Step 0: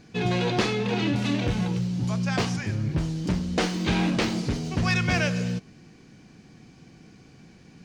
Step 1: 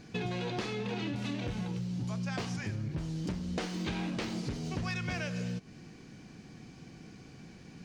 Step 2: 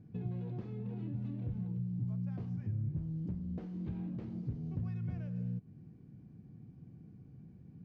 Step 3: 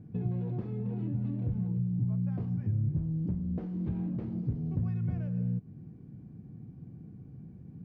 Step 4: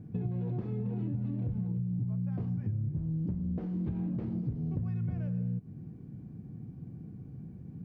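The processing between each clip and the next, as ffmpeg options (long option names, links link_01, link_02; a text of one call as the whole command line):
ffmpeg -i in.wav -af "acompressor=threshold=-33dB:ratio=6" out.wav
ffmpeg -i in.wav -af "bandpass=frequency=110:width_type=q:width=1.3:csg=0,volume=1.5dB" out.wav
ffmpeg -i in.wav -af "highshelf=frequency=2300:gain=-10.5,volume=6.5dB" out.wav
ffmpeg -i in.wav -af "acompressor=threshold=-32dB:ratio=6,volume=2.5dB" out.wav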